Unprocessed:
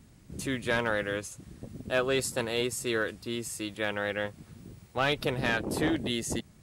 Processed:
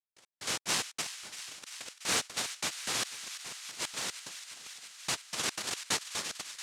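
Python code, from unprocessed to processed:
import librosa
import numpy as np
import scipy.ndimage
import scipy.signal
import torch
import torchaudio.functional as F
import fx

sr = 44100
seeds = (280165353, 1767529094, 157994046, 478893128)

y = fx.low_shelf(x, sr, hz=140.0, db=-11.0, at=(2.77, 5.27))
y = fx.noise_vocoder(y, sr, seeds[0], bands=1)
y = fx.step_gate(y, sr, bpm=183, pattern='..x..xx.xx', floor_db=-60.0, edge_ms=4.5)
y = fx.echo_wet_highpass(y, sr, ms=340, feedback_pct=82, hz=1600.0, wet_db=-11.5)
y = y * 10.0 ** (-3.0 / 20.0)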